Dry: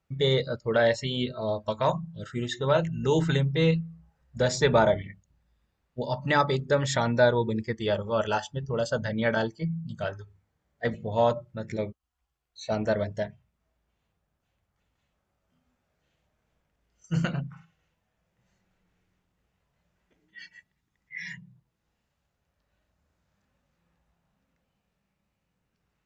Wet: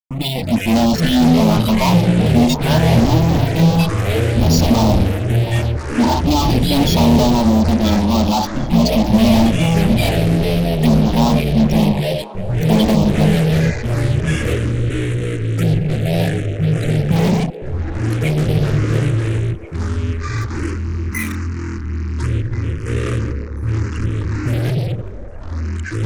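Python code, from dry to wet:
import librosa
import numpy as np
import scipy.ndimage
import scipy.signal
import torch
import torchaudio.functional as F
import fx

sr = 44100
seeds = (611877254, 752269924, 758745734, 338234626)

p1 = fx.noise_reduce_blind(x, sr, reduce_db=17)
p2 = fx.tilt_eq(p1, sr, slope=-3.5)
p3 = fx.hum_notches(p2, sr, base_hz=50, count=5)
p4 = p3 + 0.79 * np.pad(p3, (int(0.9 * sr / 1000.0), 0))[:len(p3)]
p5 = fx.level_steps(p4, sr, step_db=14)
p6 = p4 + (p5 * librosa.db_to_amplitude(0.0))
p7 = fx.fuzz(p6, sr, gain_db=40.0, gate_db=-40.0)
p8 = fx.fixed_phaser(p7, sr, hz=420.0, stages=6)
p9 = fx.env_phaser(p8, sr, low_hz=580.0, high_hz=2000.0, full_db=-13.5)
p10 = fx.echo_pitch(p9, sr, ms=266, semitones=-6, count=3, db_per_echo=-3.0)
p11 = p10 + fx.echo_stepped(p10, sr, ms=346, hz=430.0, octaves=0.7, feedback_pct=70, wet_db=-9, dry=0)
y = p11 * librosa.db_to_amplitude(3.0)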